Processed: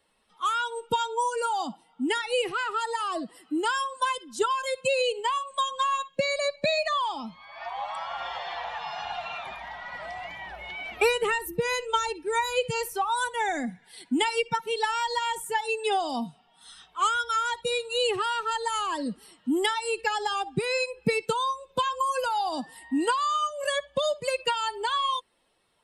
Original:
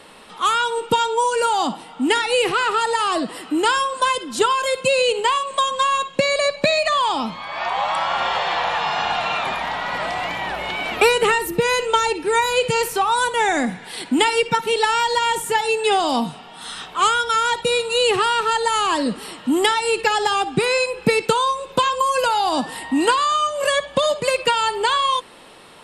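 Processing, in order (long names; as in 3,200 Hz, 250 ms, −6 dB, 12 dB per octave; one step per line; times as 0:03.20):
spectral dynamics exaggerated over time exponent 1.5
level −5.5 dB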